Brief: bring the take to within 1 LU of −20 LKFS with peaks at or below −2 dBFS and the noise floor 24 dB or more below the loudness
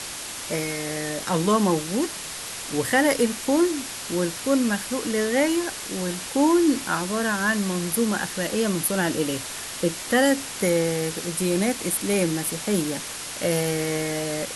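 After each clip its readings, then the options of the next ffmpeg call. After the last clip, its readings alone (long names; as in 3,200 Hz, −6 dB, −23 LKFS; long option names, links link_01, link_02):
background noise floor −34 dBFS; target noise floor −48 dBFS; integrated loudness −24.0 LKFS; sample peak −7.5 dBFS; target loudness −20.0 LKFS
→ -af "afftdn=noise_reduction=14:noise_floor=-34"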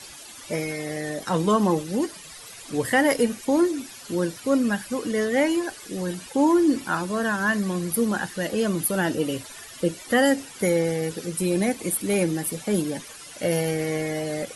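background noise floor −43 dBFS; target noise floor −49 dBFS
→ -af "afftdn=noise_reduction=6:noise_floor=-43"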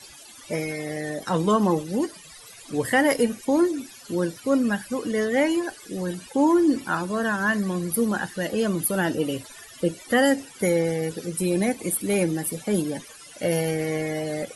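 background noise floor −46 dBFS; target noise floor −49 dBFS
→ -af "afftdn=noise_reduction=6:noise_floor=-46"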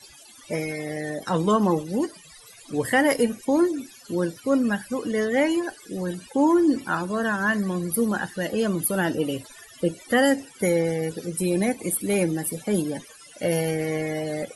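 background noise floor −49 dBFS; integrated loudness −24.5 LKFS; sample peak −8.5 dBFS; target loudness −20.0 LKFS
→ -af "volume=4.5dB"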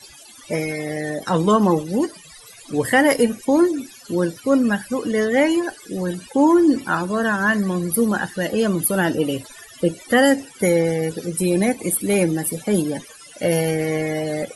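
integrated loudness −20.0 LKFS; sample peak −4.0 dBFS; background noise floor −44 dBFS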